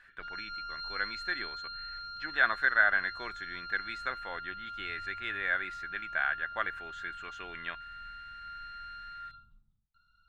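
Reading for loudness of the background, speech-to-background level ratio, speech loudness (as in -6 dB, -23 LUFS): -42.0 LUFS, 9.0 dB, -33.0 LUFS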